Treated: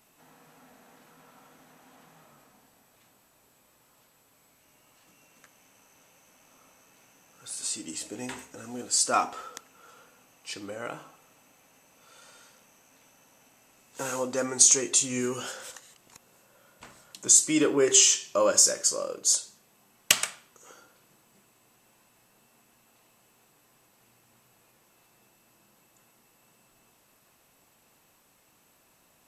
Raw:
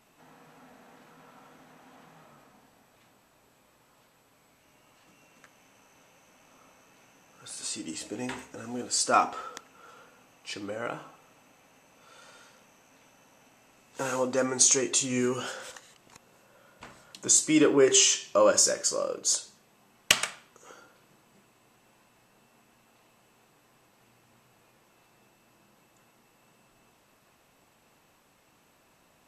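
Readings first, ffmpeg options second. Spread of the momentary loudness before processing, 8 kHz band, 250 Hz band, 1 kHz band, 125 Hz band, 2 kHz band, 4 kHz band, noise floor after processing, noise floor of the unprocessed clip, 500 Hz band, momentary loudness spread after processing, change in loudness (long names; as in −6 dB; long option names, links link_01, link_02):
19 LU, +3.0 dB, −2.5 dB, −2.0 dB, −2.5 dB, −1.5 dB, +0.5 dB, −64 dBFS, −64 dBFS, −2.5 dB, 21 LU, +2.0 dB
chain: -af "highshelf=frequency=6700:gain=11,volume=-2.5dB"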